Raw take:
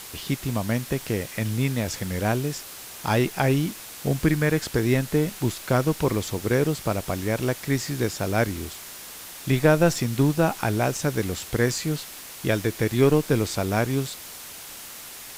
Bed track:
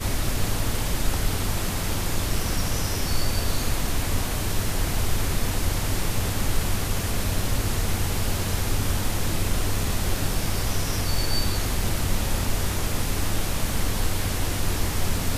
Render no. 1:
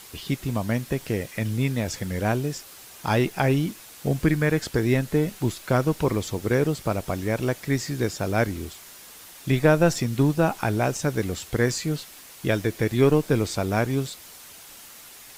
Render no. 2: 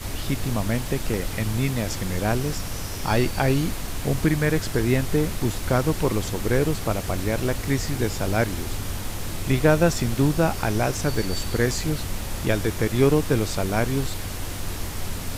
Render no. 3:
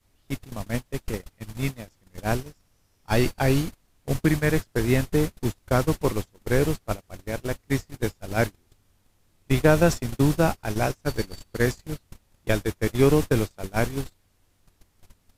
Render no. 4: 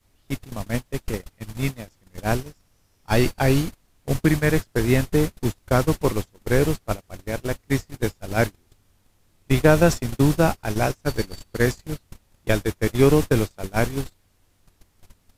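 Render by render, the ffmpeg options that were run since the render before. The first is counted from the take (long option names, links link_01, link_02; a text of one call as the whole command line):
ffmpeg -i in.wav -af "afftdn=noise_reduction=6:noise_floor=-40" out.wav
ffmpeg -i in.wav -i bed.wav -filter_complex "[1:a]volume=-5.5dB[link_01];[0:a][link_01]amix=inputs=2:normalize=0" out.wav
ffmpeg -i in.wav -af "agate=range=-35dB:threshold=-21dB:ratio=16:detection=peak" out.wav
ffmpeg -i in.wav -af "volume=2.5dB" out.wav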